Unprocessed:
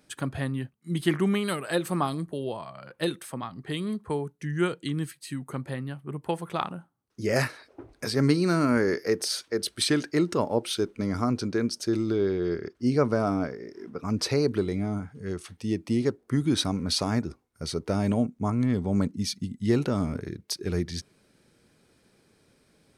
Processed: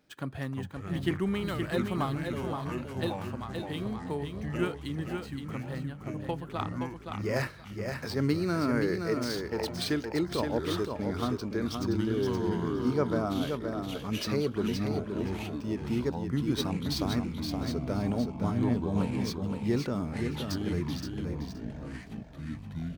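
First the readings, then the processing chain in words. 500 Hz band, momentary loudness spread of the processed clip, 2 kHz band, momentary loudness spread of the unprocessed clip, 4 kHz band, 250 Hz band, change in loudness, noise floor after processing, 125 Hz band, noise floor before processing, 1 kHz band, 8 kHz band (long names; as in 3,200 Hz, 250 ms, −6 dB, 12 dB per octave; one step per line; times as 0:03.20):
−4.0 dB, 9 LU, −4.0 dB, 11 LU, −5.5 dB, −3.0 dB, −4.0 dB, −44 dBFS, −2.5 dB, −66 dBFS, −3.0 dB, −9.5 dB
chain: running median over 5 samples
delay with pitch and tempo change per echo 265 ms, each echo −6 semitones, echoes 3, each echo −6 dB
on a send: repeating echo 521 ms, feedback 17%, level −5.5 dB
on the sum: level −5.5 dB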